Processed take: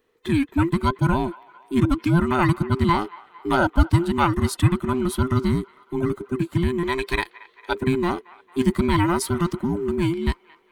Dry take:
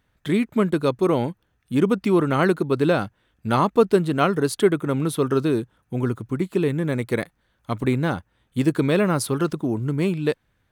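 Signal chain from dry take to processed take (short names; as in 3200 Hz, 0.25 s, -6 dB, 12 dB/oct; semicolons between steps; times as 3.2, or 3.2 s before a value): band inversion scrambler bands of 500 Hz; 6.83–7.75 graphic EQ 125/250/500/2000/4000 Hz -9/-8/+7/+4/+10 dB; band-limited delay 0.226 s, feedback 59%, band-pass 1500 Hz, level -19 dB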